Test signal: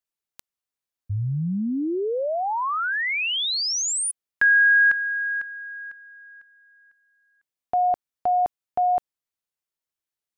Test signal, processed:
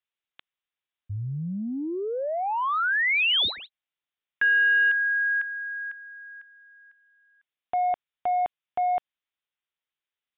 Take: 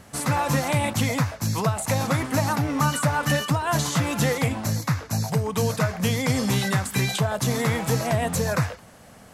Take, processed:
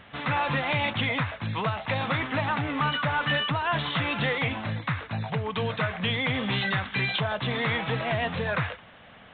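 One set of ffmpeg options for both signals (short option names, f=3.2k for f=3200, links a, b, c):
-af "tiltshelf=f=1.2k:g=-6.5,aresample=11025,asoftclip=type=tanh:threshold=-19.5dB,aresample=44100,aresample=8000,aresample=44100,volume=1dB"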